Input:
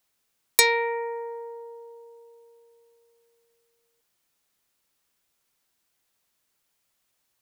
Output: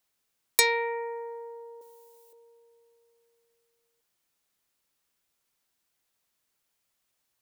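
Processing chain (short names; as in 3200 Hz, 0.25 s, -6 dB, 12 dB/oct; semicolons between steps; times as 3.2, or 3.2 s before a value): 1.81–2.33 tilt +4.5 dB/oct; gain -3.5 dB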